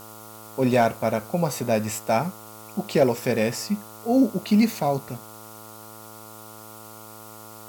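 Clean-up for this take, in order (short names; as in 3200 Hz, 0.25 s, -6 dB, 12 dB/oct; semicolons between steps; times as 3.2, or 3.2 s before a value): clip repair -10 dBFS; de-hum 108.6 Hz, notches 13; denoiser 25 dB, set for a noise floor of -43 dBFS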